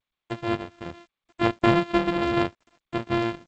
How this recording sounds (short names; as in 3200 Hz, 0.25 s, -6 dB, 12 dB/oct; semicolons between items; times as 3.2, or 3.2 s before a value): a buzz of ramps at a fixed pitch in blocks of 128 samples; random-step tremolo; a quantiser's noise floor 10-bit, dither none; G.722